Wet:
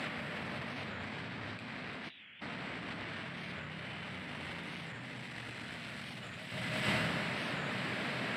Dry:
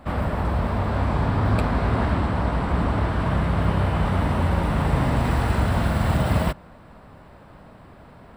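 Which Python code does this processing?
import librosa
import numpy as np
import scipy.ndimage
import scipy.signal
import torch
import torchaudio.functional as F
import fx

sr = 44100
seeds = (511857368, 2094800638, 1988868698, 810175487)

y = fx.rev_plate(x, sr, seeds[0], rt60_s=1.8, hf_ratio=0.8, predelay_ms=0, drr_db=6.5)
y = 10.0 ** (-15.5 / 20.0) * np.tanh(y / 10.0 ** (-15.5 / 20.0))
y = scipy.signal.sosfilt(scipy.signal.butter(4, 130.0, 'highpass', fs=sr, output='sos'), y)
y = y + 10.0 ** (-11.5 / 20.0) * np.pad(y, (int(343 * sr / 1000.0), 0))[:len(y)]
y = fx.spec_paint(y, sr, seeds[1], shape='noise', start_s=2.1, length_s=0.31, low_hz=1300.0, high_hz=3700.0, level_db=-27.0)
y = fx.high_shelf_res(y, sr, hz=1500.0, db=12.5, q=1.5)
y = fx.over_compress(y, sr, threshold_db=-37.0, ratio=-1.0)
y = fx.air_absorb(y, sr, metres=58.0)
y = fx.record_warp(y, sr, rpm=45.0, depth_cents=160.0)
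y = F.gain(torch.from_numpy(y), -5.0).numpy()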